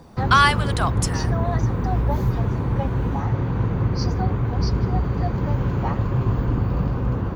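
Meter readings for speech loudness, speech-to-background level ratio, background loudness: −20.5 LKFS, 2.5 dB, −23.0 LKFS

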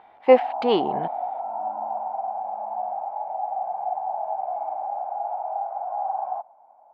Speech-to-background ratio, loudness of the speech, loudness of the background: 8.5 dB, −21.0 LKFS, −29.5 LKFS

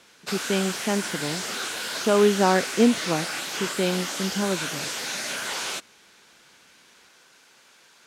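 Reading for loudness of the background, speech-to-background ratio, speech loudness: −29.0 LKFS, 4.0 dB, −25.0 LKFS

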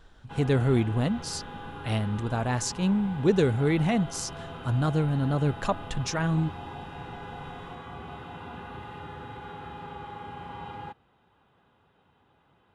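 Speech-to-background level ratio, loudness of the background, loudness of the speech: 14.0 dB, −41.0 LKFS, −27.0 LKFS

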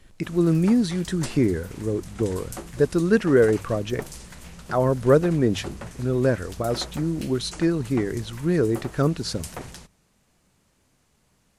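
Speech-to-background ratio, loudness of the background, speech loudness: 17.0 dB, −40.5 LKFS, −23.5 LKFS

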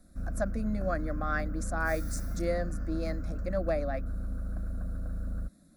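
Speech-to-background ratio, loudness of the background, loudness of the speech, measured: 3.5 dB, −38.0 LKFS, −34.5 LKFS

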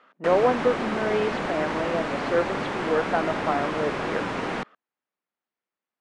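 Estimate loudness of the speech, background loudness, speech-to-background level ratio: −27.0 LKFS, −29.0 LKFS, 2.0 dB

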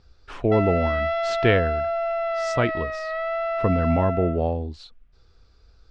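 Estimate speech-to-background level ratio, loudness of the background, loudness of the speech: 2.0 dB, −26.5 LKFS, −24.5 LKFS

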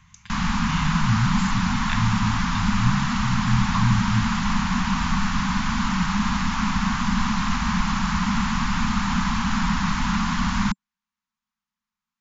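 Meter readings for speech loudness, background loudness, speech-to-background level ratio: −27.0 LKFS, −23.5 LKFS, −3.5 dB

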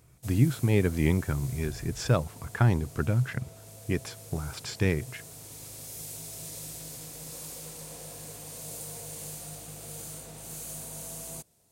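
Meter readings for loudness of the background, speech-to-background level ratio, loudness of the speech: −41.0 LKFS, 12.5 dB, −28.5 LKFS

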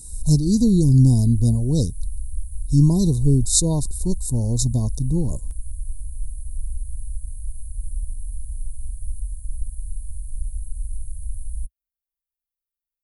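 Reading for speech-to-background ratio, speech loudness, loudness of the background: 15.0 dB, −19.5 LKFS, −34.5 LKFS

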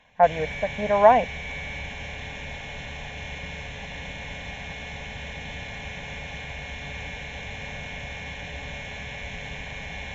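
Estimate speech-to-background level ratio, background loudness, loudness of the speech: 14.0 dB, −35.0 LKFS, −21.0 LKFS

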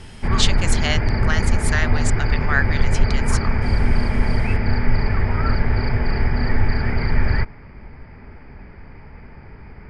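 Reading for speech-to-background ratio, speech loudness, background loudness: −4.0 dB, −26.0 LKFS, −22.0 LKFS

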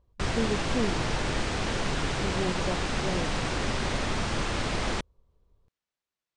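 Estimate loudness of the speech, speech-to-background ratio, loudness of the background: −34.0 LKFS, −4.0 dB, −30.0 LKFS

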